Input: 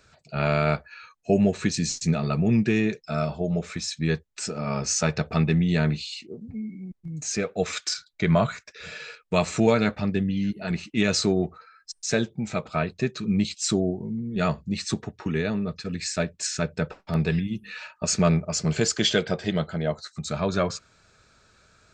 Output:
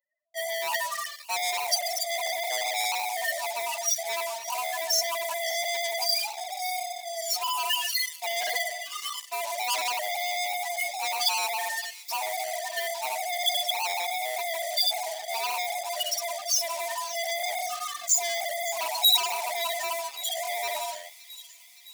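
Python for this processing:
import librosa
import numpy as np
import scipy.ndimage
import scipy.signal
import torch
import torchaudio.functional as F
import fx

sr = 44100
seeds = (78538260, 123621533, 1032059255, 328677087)

p1 = fx.band_swap(x, sr, width_hz=500)
p2 = scipy.signal.sosfilt(scipy.signal.butter(2, 440.0, 'highpass', fs=sr, output='sos'), p1)
p3 = fx.transient(p2, sr, attack_db=-10, sustain_db=8)
p4 = fx.high_shelf(p3, sr, hz=5300.0, db=-9.5)
p5 = p4 * (1.0 - 0.76 / 2.0 + 0.76 / 2.0 * np.cos(2.0 * np.pi * 7.5 * (np.arange(len(p4)) / sr)))
p6 = fx.rev_schroeder(p5, sr, rt60_s=0.94, comb_ms=38, drr_db=0.0)
p7 = fx.spec_topn(p6, sr, count=4)
p8 = fx.leveller(p7, sr, passes=5)
p9 = fx.over_compress(p8, sr, threshold_db=-20.0, ratio=-1.0)
p10 = p8 + (p9 * 10.0 ** (1.0 / 20.0))
p11 = np.diff(p10, prepend=0.0)
y = p11 + fx.echo_wet_highpass(p11, sr, ms=564, feedback_pct=68, hz=2900.0, wet_db=-15.0, dry=0)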